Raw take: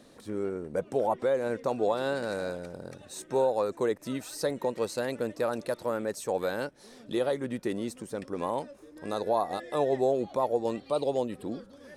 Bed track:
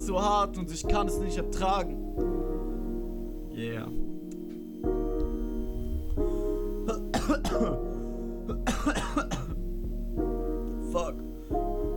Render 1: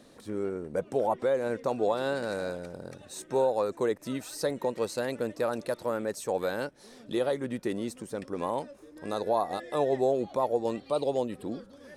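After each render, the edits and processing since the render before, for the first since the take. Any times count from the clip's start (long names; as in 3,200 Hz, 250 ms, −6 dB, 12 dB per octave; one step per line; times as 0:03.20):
no processing that can be heard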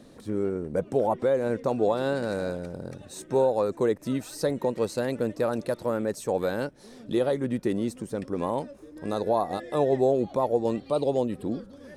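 low-shelf EQ 380 Hz +8.5 dB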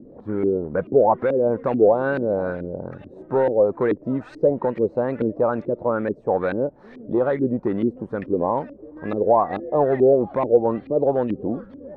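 in parallel at −7 dB: hard clipping −21.5 dBFS, distortion −12 dB
on the sum: auto-filter low-pass saw up 2.3 Hz 300–2,400 Hz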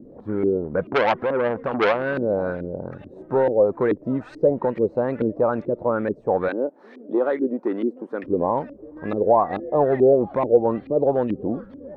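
0:00.90–0:02.17: saturating transformer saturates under 1,500 Hz
0:06.48–0:08.24: Chebyshev high-pass filter 270 Hz, order 3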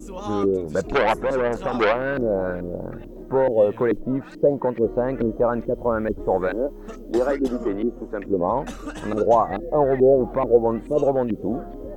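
mix in bed track −6.5 dB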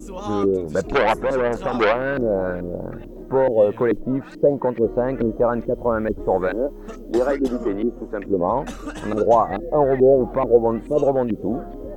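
level +1.5 dB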